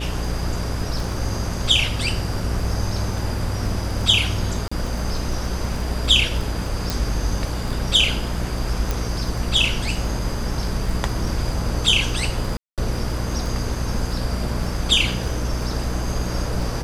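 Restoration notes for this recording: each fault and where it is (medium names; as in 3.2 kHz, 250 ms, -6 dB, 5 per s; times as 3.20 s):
buzz 60 Hz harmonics 11 -27 dBFS
crackle 12 per s -26 dBFS
4.68–4.71 s: dropout 35 ms
6.90 s: pop
8.91 s: pop
12.57–12.78 s: dropout 207 ms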